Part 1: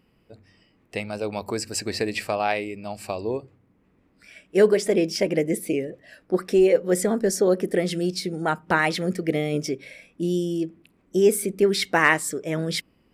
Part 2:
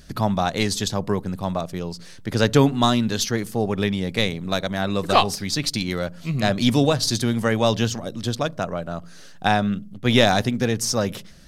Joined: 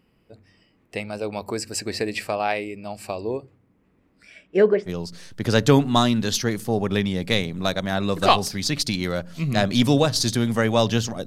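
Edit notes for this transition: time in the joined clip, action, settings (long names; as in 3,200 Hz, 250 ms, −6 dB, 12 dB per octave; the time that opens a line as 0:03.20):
part 1
0:04.18–0:04.90: low-pass filter 12,000 Hz → 1,400 Hz
0:04.87: continue with part 2 from 0:01.74, crossfade 0.06 s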